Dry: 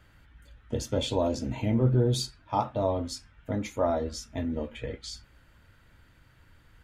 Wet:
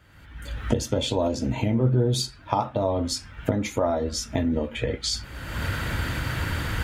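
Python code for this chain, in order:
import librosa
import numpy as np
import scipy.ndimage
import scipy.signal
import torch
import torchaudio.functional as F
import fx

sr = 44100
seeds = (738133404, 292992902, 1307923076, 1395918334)

y = fx.recorder_agc(x, sr, target_db=-18.0, rise_db_per_s=36.0, max_gain_db=30)
y = scipy.signal.sosfilt(scipy.signal.butter(2, 46.0, 'highpass', fs=sr, output='sos'), y)
y = y * librosa.db_to_amplitude(2.0)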